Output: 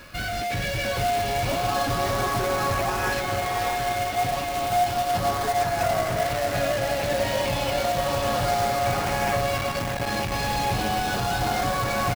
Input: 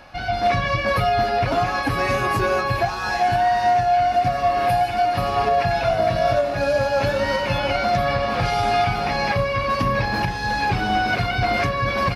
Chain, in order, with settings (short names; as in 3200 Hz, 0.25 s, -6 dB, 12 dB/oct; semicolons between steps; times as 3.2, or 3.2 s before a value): in parallel at -1 dB: negative-ratio compressor -24 dBFS; on the sum: hard clip -18.5 dBFS, distortion -9 dB; LFO notch saw up 0.32 Hz 760–4300 Hz; on a send: diffused feedback echo 0.686 s, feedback 51%, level -6 dB; on the sum: companded quantiser 4-bit; echo 0.636 s -10.5 dB; 9.58–10.32 core saturation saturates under 270 Hz; gain -5 dB